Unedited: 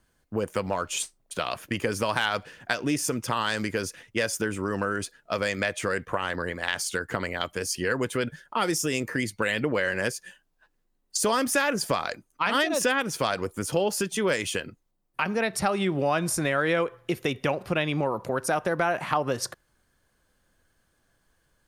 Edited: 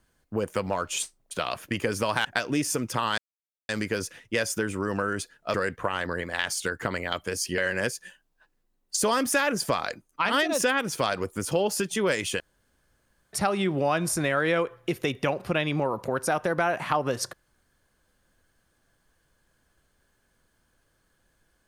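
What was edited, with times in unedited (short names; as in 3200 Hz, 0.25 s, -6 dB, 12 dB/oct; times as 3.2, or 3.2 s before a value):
2.25–2.59 cut
3.52 insert silence 0.51 s
5.37–5.83 cut
7.87–9.79 cut
14.61–15.54 room tone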